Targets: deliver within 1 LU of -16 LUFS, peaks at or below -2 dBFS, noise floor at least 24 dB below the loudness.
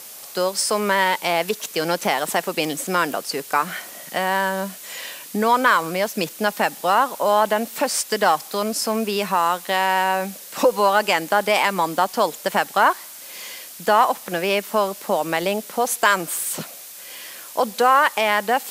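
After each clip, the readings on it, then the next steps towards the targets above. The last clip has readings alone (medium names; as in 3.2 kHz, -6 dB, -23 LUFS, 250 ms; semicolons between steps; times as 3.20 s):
noise floor -39 dBFS; noise floor target -45 dBFS; loudness -20.5 LUFS; peak level -2.5 dBFS; loudness target -16.0 LUFS
-> noise reduction 6 dB, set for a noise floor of -39 dBFS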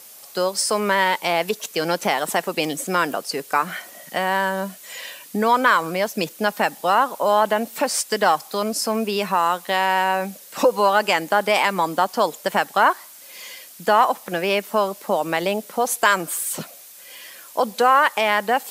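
noise floor -44 dBFS; noise floor target -45 dBFS
-> noise reduction 6 dB, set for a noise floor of -44 dBFS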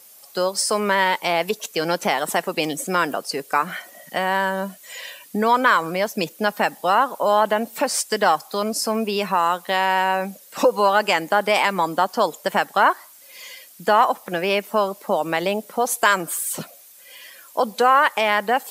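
noise floor -47 dBFS; loudness -21.0 LUFS; peak level -2.5 dBFS; loudness target -16.0 LUFS
-> trim +5 dB; peak limiter -2 dBFS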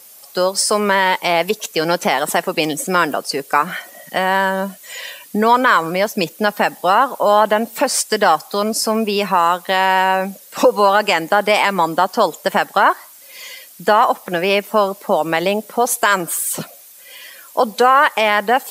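loudness -16.5 LUFS; peak level -2.0 dBFS; noise floor -42 dBFS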